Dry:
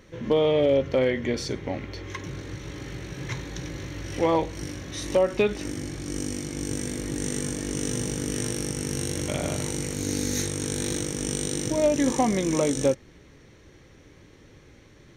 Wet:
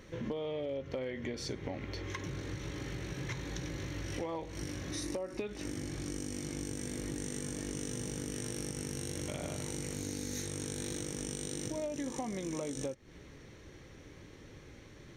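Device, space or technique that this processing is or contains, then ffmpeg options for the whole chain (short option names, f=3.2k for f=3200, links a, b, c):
serial compression, peaks first: -filter_complex "[0:a]asettb=1/sr,asplit=3[a][b][c];[a]atrim=end=4.904[d];[b]atrim=start=4.9:end=5.42,asetpts=PTS-STARTPTS,afade=t=in:d=0.004:c=qsin,afade=t=out:st=0.516:d=0.004:c=qsin,equalizer=f=315:t=o:w=0.33:g=7,equalizer=f=3.15k:t=o:w=0.33:g=-7,equalizer=f=5k:t=o:w=0.33:g=4,equalizer=f=10k:t=o:w=0.33:g=7[e];[c]atrim=start=5.416[f];[d][e]acrossfade=d=0.004:c1=hsin:c2=qsin[g];[g][f]acrossfade=d=0.004:c1=qsin:c2=hsin,acompressor=threshold=-31dB:ratio=6,acompressor=threshold=-39dB:ratio=1.5,volume=-1dB"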